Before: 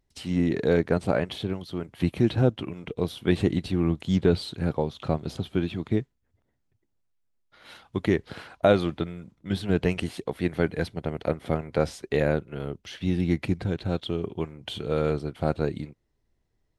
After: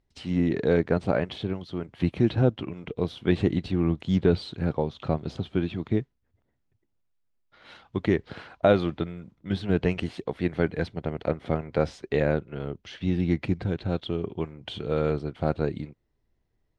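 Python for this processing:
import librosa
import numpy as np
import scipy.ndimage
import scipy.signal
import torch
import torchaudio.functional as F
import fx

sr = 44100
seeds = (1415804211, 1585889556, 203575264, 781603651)

y = fx.air_absorb(x, sr, metres=97.0)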